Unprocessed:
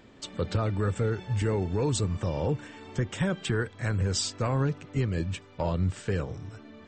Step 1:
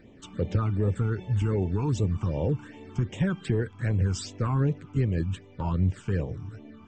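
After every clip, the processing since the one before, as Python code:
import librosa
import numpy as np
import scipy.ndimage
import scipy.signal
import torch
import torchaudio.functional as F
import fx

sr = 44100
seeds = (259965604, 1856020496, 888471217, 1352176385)

y = fx.high_shelf(x, sr, hz=2600.0, db=-10.0)
y = fx.phaser_stages(y, sr, stages=8, low_hz=520.0, high_hz=1500.0, hz=2.6, feedback_pct=0)
y = y * 10.0 ** (3.0 / 20.0)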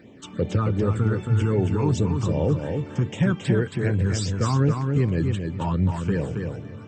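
y = scipy.signal.sosfilt(scipy.signal.butter(2, 100.0, 'highpass', fs=sr, output='sos'), x)
y = fx.echo_feedback(y, sr, ms=273, feedback_pct=20, wet_db=-5.0)
y = y * 10.0 ** (5.0 / 20.0)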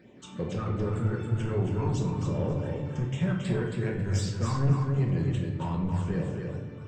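y = 10.0 ** (-16.5 / 20.0) * np.tanh(x / 10.0 ** (-16.5 / 20.0))
y = fx.room_shoebox(y, sr, seeds[0], volume_m3=220.0, walls='mixed', distance_m=1.0)
y = y * 10.0 ** (-7.5 / 20.0)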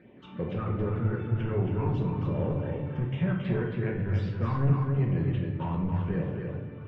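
y = scipy.signal.sosfilt(scipy.signal.butter(4, 3000.0, 'lowpass', fs=sr, output='sos'), x)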